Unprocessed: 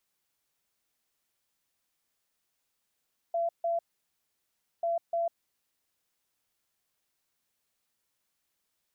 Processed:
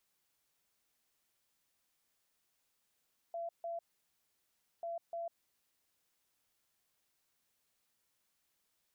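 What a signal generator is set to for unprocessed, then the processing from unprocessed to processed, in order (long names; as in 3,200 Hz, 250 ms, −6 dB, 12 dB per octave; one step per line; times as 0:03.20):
beeps in groups sine 677 Hz, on 0.15 s, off 0.15 s, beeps 2, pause 1.04 s, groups 2, −26 dBFS
brickwall limiter −37.5 dBFS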